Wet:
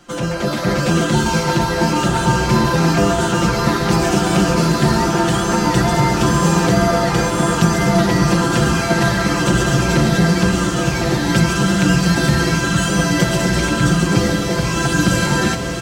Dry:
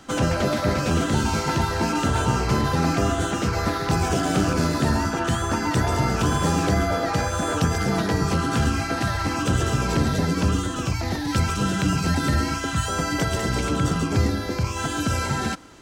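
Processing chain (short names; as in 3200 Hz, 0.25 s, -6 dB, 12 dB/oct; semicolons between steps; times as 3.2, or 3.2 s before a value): comb 5.7 ms, depth 84%; AGC; on a send: diffused feedback echo 1.152 s, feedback 73%, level -6.5 dB; on the sum: gain -2.5 dB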